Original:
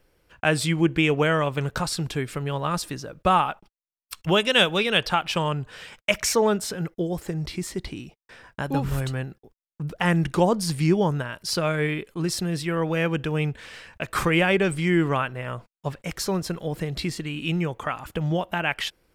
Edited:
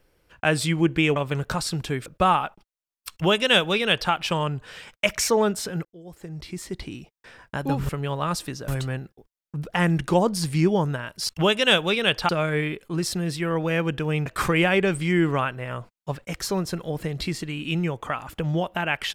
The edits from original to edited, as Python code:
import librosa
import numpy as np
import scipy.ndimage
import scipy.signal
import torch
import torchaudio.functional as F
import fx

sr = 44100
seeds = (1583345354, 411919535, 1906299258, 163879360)

y = fx.edit(x, sr, fx.cut(start_s=1.16, length_s=0.26),
    fx.move(start_s=2.32, length_s=0.79, to_s=8.94),
    fx.duplicate(start_s=4.17, length_s=1.0, to_s=11.55),
    fx.fade_in_span(start_s=6.9, length_s=1.11),
    fx.cut(start_s=13.52, length_s=0.51), tone=tone)